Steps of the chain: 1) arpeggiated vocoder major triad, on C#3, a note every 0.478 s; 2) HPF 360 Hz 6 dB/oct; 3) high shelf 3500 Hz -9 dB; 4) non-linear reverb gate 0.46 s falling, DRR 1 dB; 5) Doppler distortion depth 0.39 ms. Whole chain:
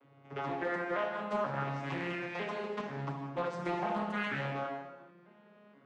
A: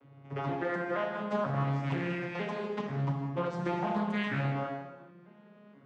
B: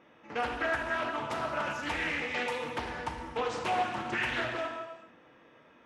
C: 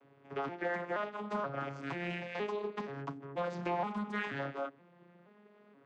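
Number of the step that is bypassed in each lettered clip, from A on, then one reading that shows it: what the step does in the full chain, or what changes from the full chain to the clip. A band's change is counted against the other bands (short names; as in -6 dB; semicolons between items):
2, 125 Hz band +8.0 dB; 1, 125 Hz band -9.0 dB; 4, 125 Hz band -2.0 dB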